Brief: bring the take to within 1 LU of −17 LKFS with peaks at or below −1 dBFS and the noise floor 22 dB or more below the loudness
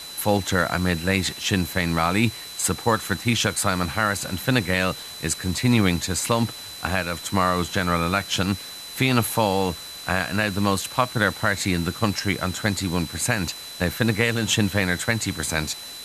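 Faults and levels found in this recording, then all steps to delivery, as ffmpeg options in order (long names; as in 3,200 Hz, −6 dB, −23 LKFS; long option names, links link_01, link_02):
interfering tone 4,000 Hz; level of the tone −37 dBFS; background noise floor −38 dBFS; target noise floor −45 dBFS; integrated loudness −23.0 LKFS; sample peak −5.5 dBFS; target loudness −17.0 LKFS
→ -af "bandreject=frequency=4000:width=30"
-af "afftdn=noise_reduction=7:noise_floor=-38"
-af "volume=6dB,alimiter=limit=-1dB:level=0:latency=1"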